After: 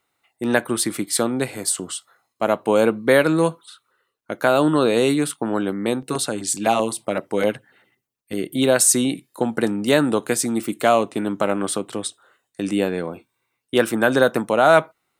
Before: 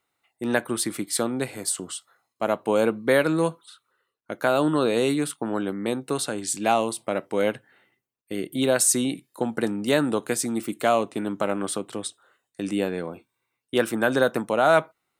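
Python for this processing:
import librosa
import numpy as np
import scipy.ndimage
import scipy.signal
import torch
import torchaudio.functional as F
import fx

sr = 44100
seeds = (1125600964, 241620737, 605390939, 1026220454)

y = fx.filter_lfo_notch(x, sr, shape='saw_down', hz=7.8, low_hz=270.0, high_hz=3800.0, q=1.2, at=(5.98, 8.39), fade=0.02)
y = y * 10.0 ** (4.5 / 20.0)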